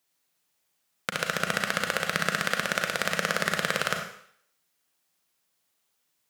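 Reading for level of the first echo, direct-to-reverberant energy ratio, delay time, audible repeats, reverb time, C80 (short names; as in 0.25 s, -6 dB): none, 3.0 dB, none, none, 0.65 s, 8.0 dB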